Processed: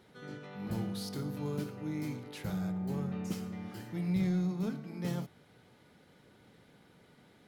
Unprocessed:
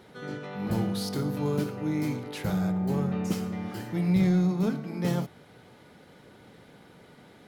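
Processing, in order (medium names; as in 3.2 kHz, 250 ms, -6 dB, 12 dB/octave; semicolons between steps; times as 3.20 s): peaking EQ 670 Hz -3 dB 2.4 oct; trim -7 dB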